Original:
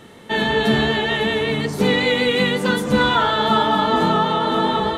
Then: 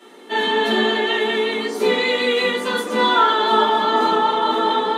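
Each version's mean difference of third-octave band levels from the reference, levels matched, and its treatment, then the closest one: 6.0 dB: steep high-pass 240 Hz 48 dB/oct; shoebox room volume 120 m³, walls furnished, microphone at 3.1 m; gain -7 dB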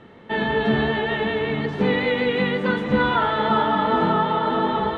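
4.5 dB: LPF 2400 Hz 12 dB/oct; on a send: thinning echo 0.459 s, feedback 66%, level -12.5 dB; on the sum: gain -2.5 dB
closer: second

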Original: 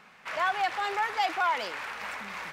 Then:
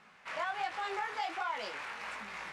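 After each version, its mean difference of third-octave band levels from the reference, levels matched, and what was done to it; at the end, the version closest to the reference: 2.5 dB: LPF 11000 Hz 24 dB/oct; compressor, threshold -27 dBFS, peak gain reduction 5 dB; chorus 1.3 Hz, delay 18 ms, depth 5.6 ms; gain -2 dB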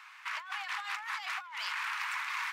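10.5 dB: Chebyshev high-pass 990 Hz, order 4; negative-ratio compressor -39 dBFS, ratio -1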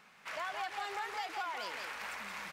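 4.5 dB: high shelf 4100 Hz +7.5 dB; compressor, threshold -29 dBFS, peak gain reduction 8 dB; echo 0.17 s -5.5 dB; gain -7.5 dB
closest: first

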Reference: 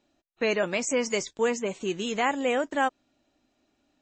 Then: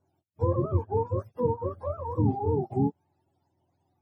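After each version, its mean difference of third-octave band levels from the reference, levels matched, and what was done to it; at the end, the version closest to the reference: 17.0 dB: spectrum mirrored in octaves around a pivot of 470 Hz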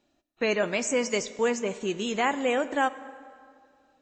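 2.0 dB: plate-style reverb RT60 2.2 s, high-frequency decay 0.65×, DRR 13.5 dB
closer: second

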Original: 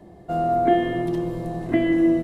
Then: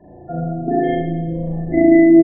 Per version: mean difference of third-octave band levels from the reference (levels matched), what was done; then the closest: 7.5 dB: spectral gate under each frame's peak -20 dB strong; reverb removal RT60 0.78 s; reverse bouncing-ball echo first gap 50 ms, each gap 1.1×, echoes 5; spring tank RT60 1.2 s, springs 36 ms, chirp 55 ms, DRR -7.5 dB; gain -1 dB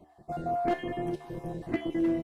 3.5 dB: random spectral dropouts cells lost 30%; overloaded stage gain 13 dB; resonator 75 Hz, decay 0.45 s, harmonics all, mix 70%; on a send: echo 0.409 s -19 dB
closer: second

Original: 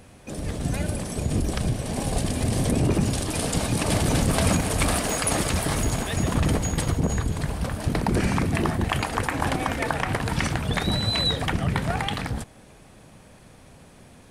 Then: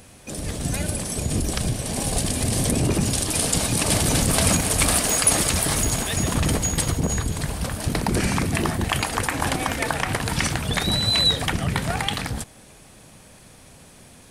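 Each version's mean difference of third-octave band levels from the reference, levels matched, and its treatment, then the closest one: 3.0 dB: high shelf 3200 Hz +9.5 dB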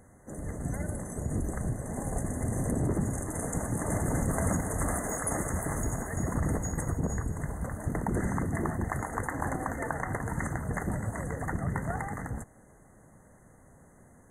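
6.0 dB: brick-wall FIR band-stop 2100–6100 Hz; gain -7 dB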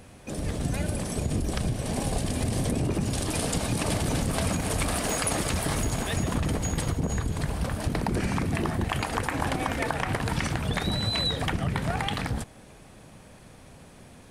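1.5 dB: compressor, threshold -23 dBFS, peak gain reduction 7 dB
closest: third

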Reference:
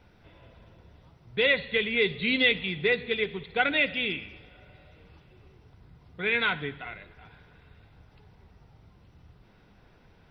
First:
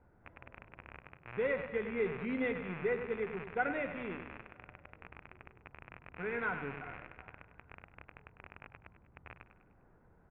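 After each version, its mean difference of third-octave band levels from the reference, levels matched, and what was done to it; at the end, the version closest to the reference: 7.0 dB: rattling part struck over -50 dBFS, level -18 dBFS; LPF 1600 Hz 24 dB/oct; notches 50/100/150/200 Hz; on a send: feedback echo 0.1 s, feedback 49%, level -11 dB; on the sum: gain -6.5 dB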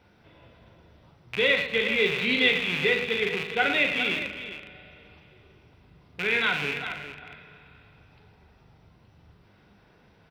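5.0 dB: rattling part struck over -44 dBFS, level -19 dBFS; HPF 110 Hz 6 dB/oct; tapped delay 40/112/411 ms -7/-10.5/-11.5 dB; spring tank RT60 3.1 s, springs 35/39 ms, chirp 40 ms, DRR 13 dB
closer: second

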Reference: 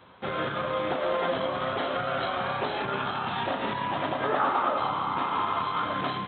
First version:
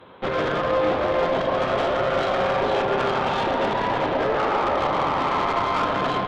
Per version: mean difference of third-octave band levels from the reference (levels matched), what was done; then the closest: 4.5 dB: bell 430 Hz +7 dB 1.3 oct; limiter -18 dBFS, peak gain reduction 6 dB; tube stage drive 27 dB, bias 0.8; on a send: narrowing echo 0.132 s, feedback 79%, band-pass 600 Hz, level -4 dB; on the sum: gain +8.5 dB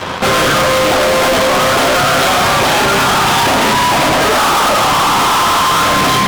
11.5 dB: HPF 48 Hz; notches 60/120/180/240/300/360/420/480/540 Hz; fuzz box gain 48 dB, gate -57 dBFS; gain +2.5 dB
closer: first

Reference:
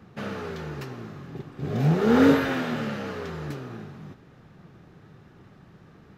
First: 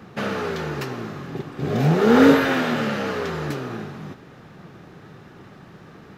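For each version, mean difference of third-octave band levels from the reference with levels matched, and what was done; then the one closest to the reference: 3.0 dB: low shelf 140 Hz -9.5 dB; in parallel at -2.5 dB: compressor, threshold -33 dBFS, peak gain reduction 17 dB; on the sum: gain +5 dB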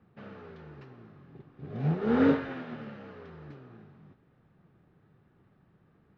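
6.0 dB: air absorption 250 m; upward expander 1.5:1, over -31 dBFS; gain -4.5 dB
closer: first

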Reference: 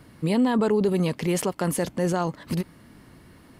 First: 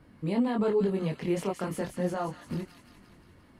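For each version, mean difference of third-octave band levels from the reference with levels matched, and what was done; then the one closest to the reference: 3.5 dB: high shelf 3900 Hz -11.5 dB; chorus voices 4, 0.85 Hz, delay 23 ms, depth 3 ms; on a send: thin delay 0.174 s, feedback 63%, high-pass 2100 Hz, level -6 dB; on the sum: gain -2.5 dB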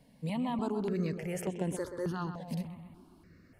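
5.0 dB: high shelf 5300 Hz -4.5 dB; on a send: darkening echo 0.129 s, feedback 60%, low-pass 3000 Hz, level -8.5 dB; on the sum: step phaser 3.4 Hz 350–4600 Hz; gain -8 dB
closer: first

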